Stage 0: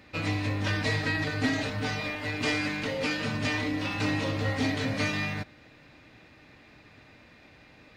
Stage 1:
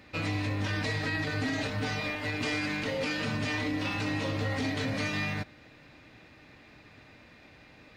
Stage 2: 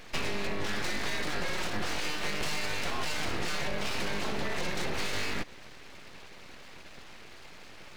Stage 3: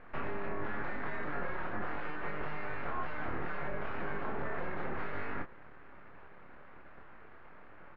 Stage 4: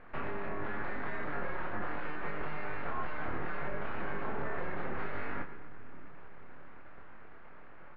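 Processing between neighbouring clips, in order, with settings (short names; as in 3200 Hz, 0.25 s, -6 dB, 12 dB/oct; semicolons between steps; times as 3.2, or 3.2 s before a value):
limiter -22.5 dBFS, peak gain reduction 7.5 dB
compressor, threshold -34 dBFS, peak gain reduction 7 dB; full-wave rectifier; gain +7.5 dB
ladder low-pass 1800 Hz, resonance 35%; doubler 27 ms -6 dB; gain +2 dB
split-band echo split 350 Hz, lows 0.631 s, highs 0.117 s, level -13 dB; downsampling 11025 Hz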